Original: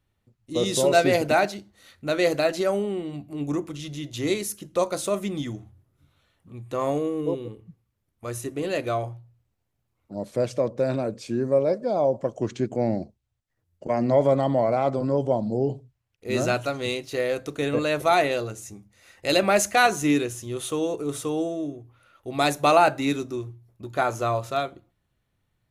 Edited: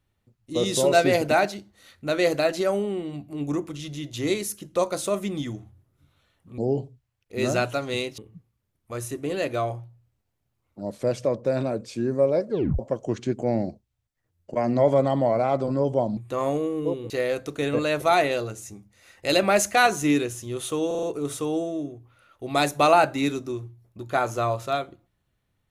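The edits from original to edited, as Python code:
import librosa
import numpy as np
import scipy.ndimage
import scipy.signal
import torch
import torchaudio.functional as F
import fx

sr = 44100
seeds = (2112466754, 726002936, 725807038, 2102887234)

y = fx.edit(x, sr, fx.swap(start_s=6.58, length_s=0.93, other_s=15.5, other_length_s=1.6),
    fx.tape_stop(start_s=11.82, length_s=0.3),
    fx.stutter(start_s=20.87, slice_s=0.04, count=5), tone=tone)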